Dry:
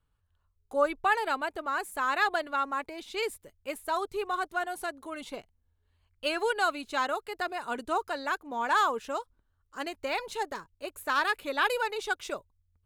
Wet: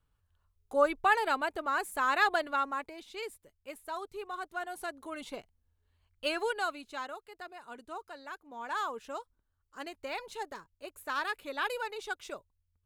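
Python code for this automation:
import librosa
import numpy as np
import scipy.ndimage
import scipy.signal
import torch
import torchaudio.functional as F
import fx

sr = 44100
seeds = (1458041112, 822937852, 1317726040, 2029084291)

y = fx.gain(x, sr, db=fx.line((2.49, 0.0), (3.21, -8.5), (4.34, -8.5), (5.05, -2.0), (6.3, -2.0), (7.26, -13.0), (8.3, -13.0), (9.16, -6.5)))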